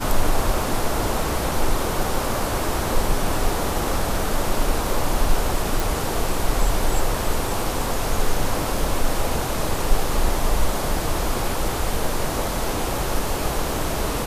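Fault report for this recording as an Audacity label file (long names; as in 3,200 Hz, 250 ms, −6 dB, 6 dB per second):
5.800000	5.800000	click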